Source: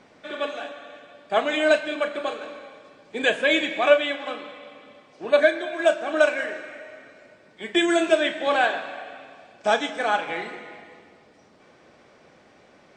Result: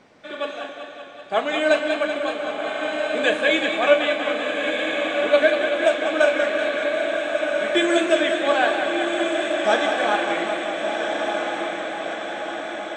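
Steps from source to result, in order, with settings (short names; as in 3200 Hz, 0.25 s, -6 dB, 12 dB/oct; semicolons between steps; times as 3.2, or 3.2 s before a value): diffused feedback echo 1.377 s, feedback 61%, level -4 dB; warbling echo 0.191 s, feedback 75%, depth 56 cents, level -8 dB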